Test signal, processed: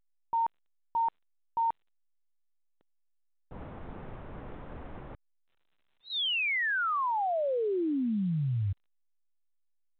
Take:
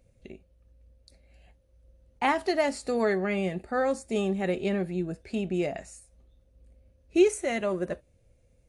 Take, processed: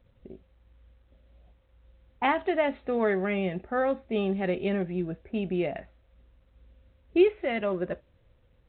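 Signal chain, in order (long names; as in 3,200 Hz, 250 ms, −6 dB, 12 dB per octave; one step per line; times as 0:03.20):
low-pass that shuts in the quiet parts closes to 550 Hz, open at −23.5 dBFS
A-law companding 64 kbit/s 8,000 Hz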